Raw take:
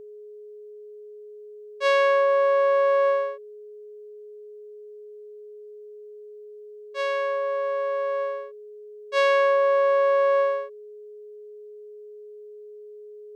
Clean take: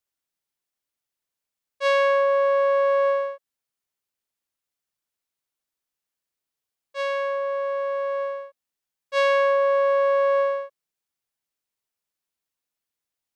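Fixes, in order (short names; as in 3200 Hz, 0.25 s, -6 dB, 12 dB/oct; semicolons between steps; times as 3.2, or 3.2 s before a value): notch 420 Hz, Q 30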